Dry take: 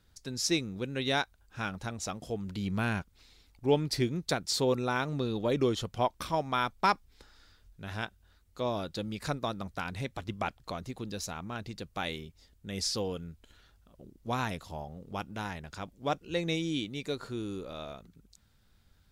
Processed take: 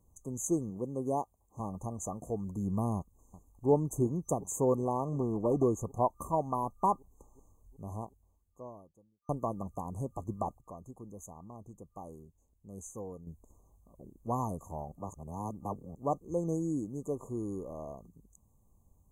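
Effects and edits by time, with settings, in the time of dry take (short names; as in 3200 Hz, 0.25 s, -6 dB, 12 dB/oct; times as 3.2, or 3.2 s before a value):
0.7–1.6 notch comb 1300 Hz
2.96–3.69 echo throw 0.37 s, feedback 80%, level -15.5 dB
4.85–5.63 Doppler distortion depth 0.3 ms
7.88–9.29 fade out quadratic
10.61–13.27 gain -8.5 dB
14.92–15.95 reverse
whole clip: FFT band-reject 1200–6100 Hz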